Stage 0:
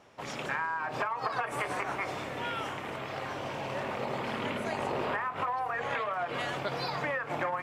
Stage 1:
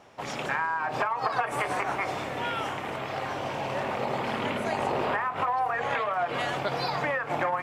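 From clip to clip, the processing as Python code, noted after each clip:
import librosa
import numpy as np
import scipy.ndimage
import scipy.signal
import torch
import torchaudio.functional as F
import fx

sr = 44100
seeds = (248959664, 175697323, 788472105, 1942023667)

y = fx.peak_eq(x, sr, hz=770.0, db=3.5, octaves=0.44)
y = y * librosa.db_to_amplitude(3.5)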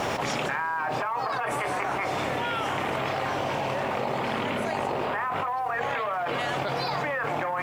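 y = fx.quant_companded(x, sr, bits=8)
y = fx.env_flatten(y, sr, amount_pct=100)
y = y * librosa.db_to_amplitude(-5.5)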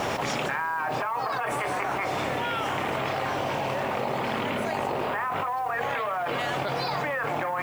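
y = fx.dmg_noise_colour(x, sr, seeds[0], colour='blue', level_db=-58.0)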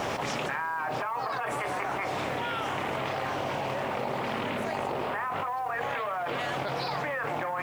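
y = fx.doppler_dist(x, sr, depth_ms=0.2)
y = y * librosa.db_to_amplitude(-3.0)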